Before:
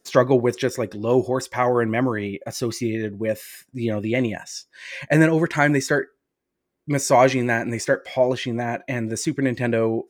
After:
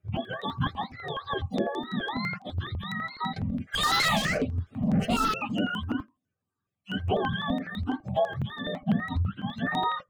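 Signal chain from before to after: spectrum mirrored in octaves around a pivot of 650 Hz; 8.82–9.48 RIAA curve playback; compressor 4:1, threshold -22 dBFS, peak gain reduction 9 dB; 3.36–5.34 overdrive pedal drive 32 dB, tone 4700 Hz, clips at -14 dBFS; rotary speaker horn 1.2 Hz; step phaser 12 Hz 250–5800 Hz; gain +1.5 dB

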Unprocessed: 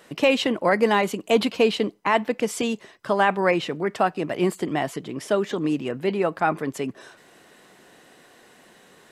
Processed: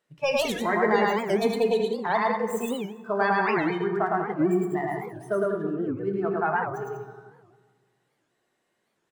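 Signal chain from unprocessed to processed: tracing distortion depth 0.083 ms; spectral noise reduction 22 dB; 5.35–5.88 high shelf 3500 Hz -9.5 dB; loudspeakers at several distances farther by 37 m -1 dB, 66 m -7 dB; on a send at -5.5 dB: reverb RT60 1.6 s, pre-delay 4 ms; on the sum: record warp 78 rpm, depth 250 cents; gain -5 dB

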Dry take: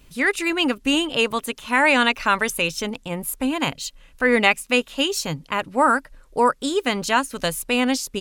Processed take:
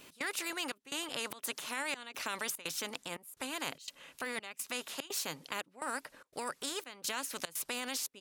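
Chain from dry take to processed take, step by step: step gate "x.xxxxx..xxx" 147 bpm -24 dB; limiter -12.5 dBFS, peak gain reduction 7 dB; HPF 280 Hz 12 dB/oct; spectral compressor 2:1; gain -7.5 dB

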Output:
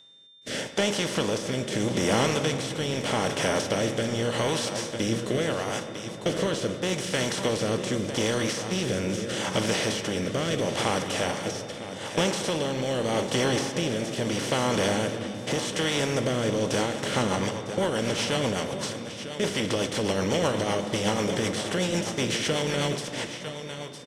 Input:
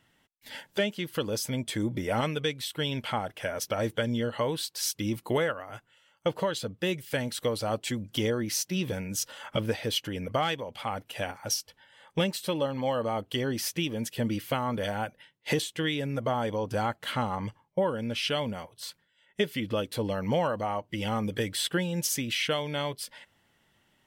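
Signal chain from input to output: per-bin compression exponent 0.4; de-esser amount 55%; gate -31 dBFS, range -28 dB; synth low-pass 8000 Hz, resonance Q 1.7; echo 0.952 s -11 dB; in parallel at -4 dB: overloaded stage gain 19.5 dB; on the sum: rotary speaker horn 0.8 Hz, later 8 Hz, at 16.44; on a send at -7.5 dB: reverb RT60 3.2 s, pre-delay 3 ms; on the sum: whine 3600 Hz -46 dBFS; gain -5.5 dB

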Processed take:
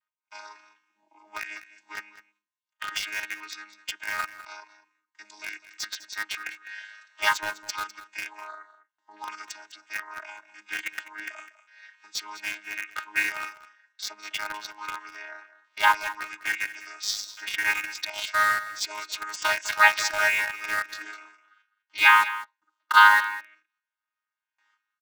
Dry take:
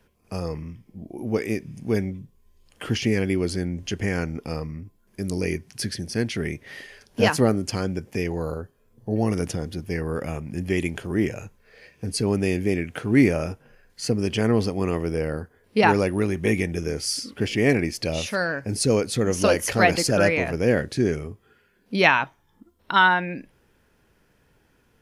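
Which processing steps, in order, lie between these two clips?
chord vocoder bare fifth, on G#3; gate with hold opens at -55 dBFS; inverse Chebyshev high-pass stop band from 510 Hz, stop band 40 dB; in parallel at -6 dB: requantised 6-bit, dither none; on the sum: echo 0.203 s -15.5 dB; gain +8.5 dB

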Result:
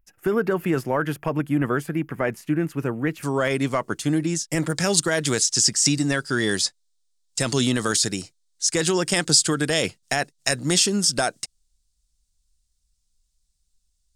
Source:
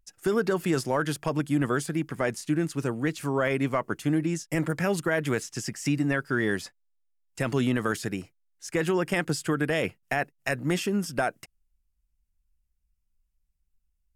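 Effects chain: band shelf 5700 Hz -10 dB, from 3.22 s +8.5 dB, from 4.75 s +16 dB; gain +3 dB

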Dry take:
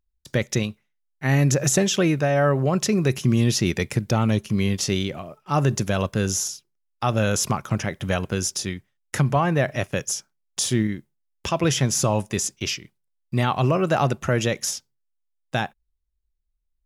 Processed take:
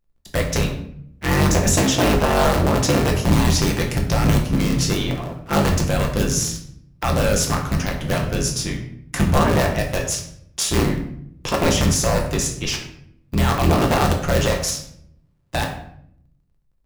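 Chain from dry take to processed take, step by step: cycle switcher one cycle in 3, inverted; in parallel at -3.5 dB: wrapped overs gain 11.5 dB; on the sum: shoebox room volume 130 m³, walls mixed, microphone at 0.82 m; gain -4 dB

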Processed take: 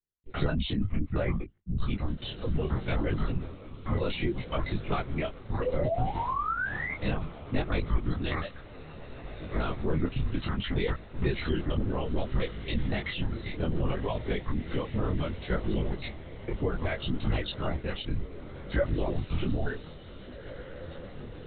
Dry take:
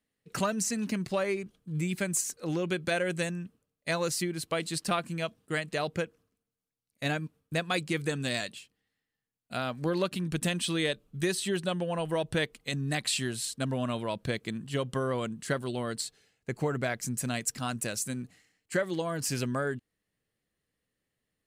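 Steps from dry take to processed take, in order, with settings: trilling pitch shifter -12 st, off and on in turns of 0.117 s; gate with hold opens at -57 dBFS; reverb removal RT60 1.7 s; on a send: diffused feedback echo 1.979 s, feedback 47%, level -15.5 dB; on the sum: painted sound rise, 5.6–6.94, 460–2200 Hz -29 dBFS; notch comb 850 Hz; in parallel at -1.5 dB: negative-ratio compressor -37 dBFS, ratio -1; on the sum: LPC vocoder at 8 kHz whisper; low shelf 340 Hz +7.5 dB; detuned doubles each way 22 cents

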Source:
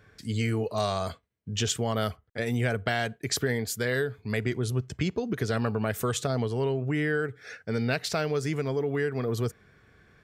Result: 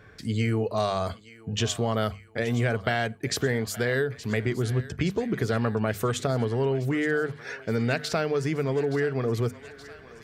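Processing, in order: high shelf 4000 Hz -7 dB; notches 50/100/150/200/250 Hz; in parallel at +2 dB: compressor, threshold -37 dBFS, peak gain reduction 14 dB; on the sum: thinning echo 0.872 s, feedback 70%, high-pass 740 Hz, level -15.5 dB

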